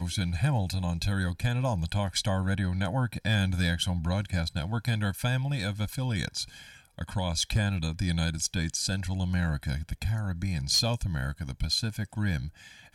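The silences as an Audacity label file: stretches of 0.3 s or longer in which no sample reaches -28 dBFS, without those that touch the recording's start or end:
6.430000	7.010000	silence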